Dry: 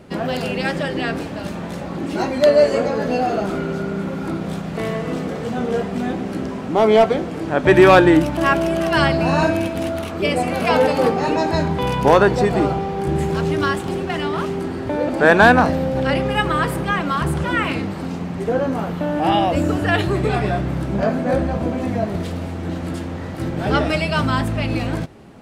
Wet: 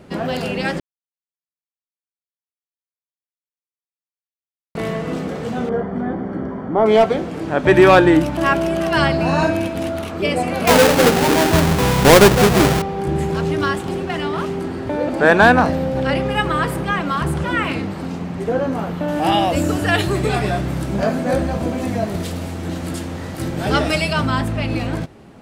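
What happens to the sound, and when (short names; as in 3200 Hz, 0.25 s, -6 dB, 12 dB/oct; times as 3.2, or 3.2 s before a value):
0.8–4.75 mute
5.69–6.86 polynomial smoothing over 41 samples
10.67–12.82 half-waves squared off
19.08–24.13 high shelf 4500 Hz +11.5 dB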